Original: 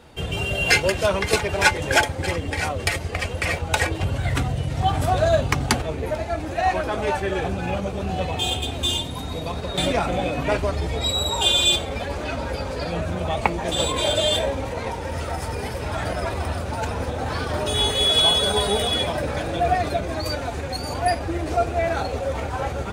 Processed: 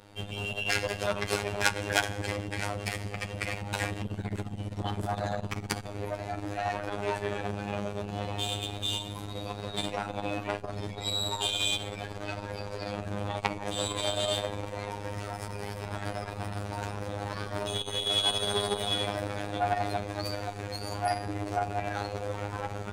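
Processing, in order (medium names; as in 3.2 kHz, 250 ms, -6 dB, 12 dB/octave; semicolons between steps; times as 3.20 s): reverberation, pre-delay 3 ms, DRR 9 dB; robot voice 102 Hz; transformer saturation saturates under 3.5 kHz; trim -4 dB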